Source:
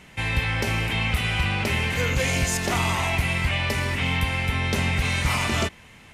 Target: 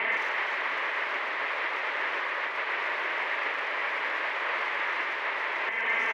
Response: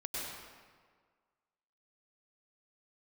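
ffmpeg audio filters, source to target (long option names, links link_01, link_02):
-filter_complex "[0:a]aecho=1:1:4.4:0.74,asplit=2[link_01][link_02];[link_02]acompressor=threshold=-33dB:ratio=6,volume=2dB[link_03];[link_01][link_03]amix=inputs=2:normalize=0,alimiter=limit=-19dB:level=0:latency=1:release=211,aeval=exprs='0.112*sin(PI/2*7.94*val(0)/0.112)':channel_layout=same,highpass=frequency=470:width=0.5412,highpass=frequency=470:width=1.3066,equalizer=frequency=490:width_type=q:width=4:gain=-5,equalizer=frequency=740:width_type=q:width=4:gain=-9,equalizer=frequency=1400:width_type=q:width=4:gain=-5,equalizer=frequency=2000:width_type=q:width=4:gain=4,lowpass=frequency=2100:width=0.5412,lowpass=frequency=2100:width=1.3066,asplit=2[link_04][link_05];[link_05]adelay=120,highpass=300,lowpass=3400,asoftclip=type=hard:threshold=-26.5dB,volume=-12dB[link_06];[link_04][link_06]amix=inputs=2:normalize=0"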